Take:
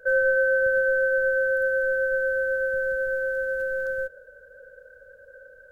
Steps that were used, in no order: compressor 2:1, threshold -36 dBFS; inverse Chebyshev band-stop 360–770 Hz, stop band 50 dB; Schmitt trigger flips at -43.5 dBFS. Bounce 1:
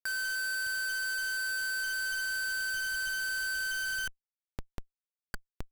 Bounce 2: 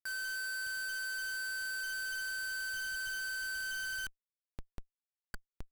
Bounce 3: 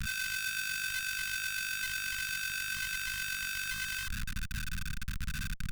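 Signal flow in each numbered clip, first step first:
inverse Chebyshev band-stop > Schmitt trigger > compressor; compressor > inverse Chebyshev band-stop > Schmitt trigger; Schmitt trigger > compressor > inverse Chebyshev band-stop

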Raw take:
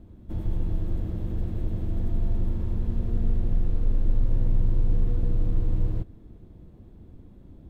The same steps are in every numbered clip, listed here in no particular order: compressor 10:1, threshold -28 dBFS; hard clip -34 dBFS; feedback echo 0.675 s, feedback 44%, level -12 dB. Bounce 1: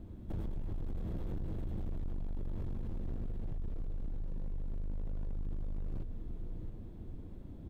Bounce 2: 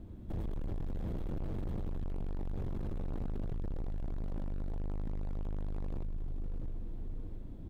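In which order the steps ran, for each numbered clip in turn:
compressor > feedback echo > hard clip; feedback echo > hard clip > compressor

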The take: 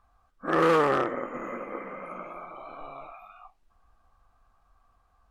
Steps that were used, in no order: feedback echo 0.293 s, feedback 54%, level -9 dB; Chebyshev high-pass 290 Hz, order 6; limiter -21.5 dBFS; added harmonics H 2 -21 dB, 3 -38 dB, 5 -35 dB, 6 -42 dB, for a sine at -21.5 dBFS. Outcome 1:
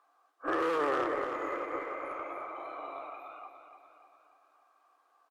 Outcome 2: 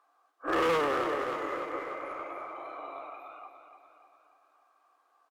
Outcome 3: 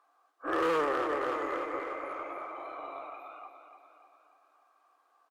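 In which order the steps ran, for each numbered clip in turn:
Chebyshev high-pass > limiter > added harmonics > feedback echo; Chebyshev high-pass > added harmonics > feedback echo > limiter; feedback echo > limiter > Chebyshev high-pass > added harmonics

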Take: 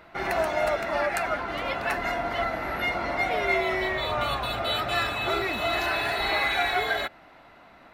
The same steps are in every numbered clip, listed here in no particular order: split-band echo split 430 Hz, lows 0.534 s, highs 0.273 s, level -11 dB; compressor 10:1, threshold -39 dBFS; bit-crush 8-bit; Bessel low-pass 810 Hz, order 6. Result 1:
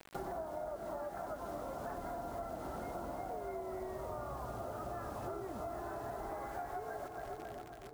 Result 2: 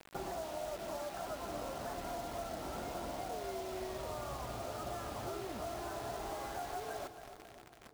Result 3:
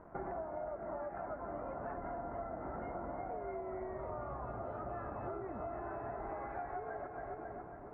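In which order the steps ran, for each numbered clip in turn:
Bessel low-pass > bit-crush > split-band echo > compressor; Bessel low-pass > compressor > bit-crush > split-band echo; split-band echo > bit-crush > Bessel low-pass > compressor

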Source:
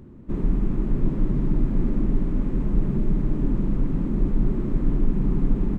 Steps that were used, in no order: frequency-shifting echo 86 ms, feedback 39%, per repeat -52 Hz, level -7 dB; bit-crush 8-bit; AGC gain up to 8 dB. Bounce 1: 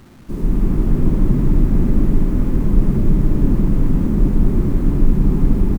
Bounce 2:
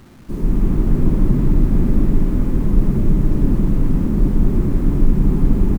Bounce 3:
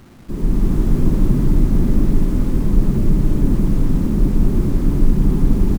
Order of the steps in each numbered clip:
AGC > frequency-shifting echo > bit-crush; frequency-shifting echo > AGC > bit-crush; frequency-shifting echo > bit-crush > AGC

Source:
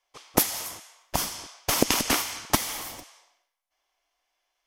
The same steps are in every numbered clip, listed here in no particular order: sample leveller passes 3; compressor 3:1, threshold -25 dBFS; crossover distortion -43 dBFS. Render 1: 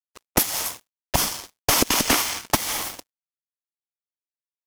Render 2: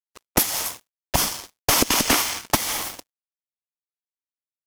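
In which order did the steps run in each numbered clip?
compressor > crossover distortion > sample leveller; crossover distortion > compressor > sample leveller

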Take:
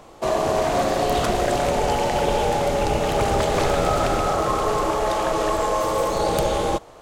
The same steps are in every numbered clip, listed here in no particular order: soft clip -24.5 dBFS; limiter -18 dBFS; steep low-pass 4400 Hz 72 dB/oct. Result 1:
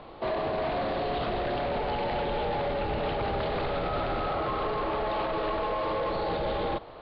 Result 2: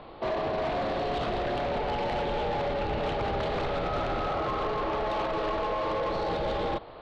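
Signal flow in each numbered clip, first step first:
limiter > soft clip > steep low-pass; limiter > steep low-pass > soft clip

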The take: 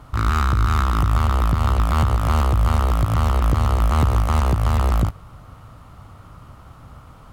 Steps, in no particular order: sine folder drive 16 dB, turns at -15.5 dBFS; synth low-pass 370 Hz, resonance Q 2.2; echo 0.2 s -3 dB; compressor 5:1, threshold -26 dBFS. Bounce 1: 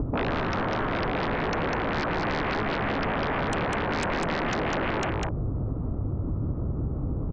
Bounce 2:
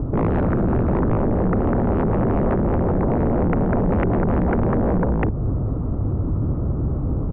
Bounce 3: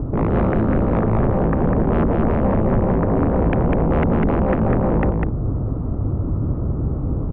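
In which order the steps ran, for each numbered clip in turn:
synth low-pass > sine folder > echo > compressor; echo > compressor > synth low-pass > sine folder; synth low-pass > compressor > sine folder > echo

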